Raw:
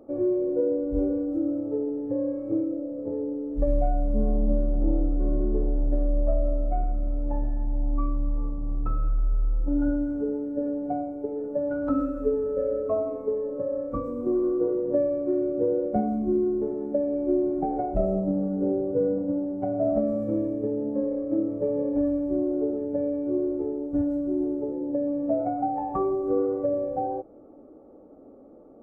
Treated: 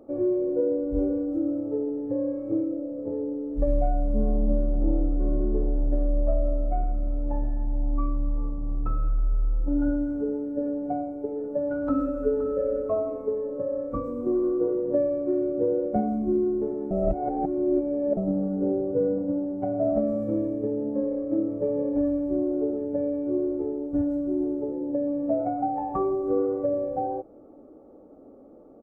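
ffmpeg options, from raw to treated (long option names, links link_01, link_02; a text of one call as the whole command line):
ffmpeg -i in.wav -filter_complex "[0:a]asplit=2[link_01][link_02];[link_02]afade=type=in:start_time=11.53:duration=0.01,afade=type=out:start_time=12.46:duration=0.01,aecho=0:1:520|1040|1560:0.251189|0.0627972|0.0156993[link_03];[link_01][link_03]amix=inputs=2:normalize=0,asplit=3[link_04][link_05][link_06];[link_04]atrim=end=16.912[link_07];[link_05]atrim=start=16.908:end=18.172,asetpts=PTS-STARTPTS,areverse[link_08];[link_06]atrim=start=18.168[link_09];[link_07][link_08]acrossfade=duration=0.004:curve1=hsin:curve2=hsin[link_10];[link_10][link_09]acrossfade=duration=0.004:curve1=hsin:curve2=hsin" out.wav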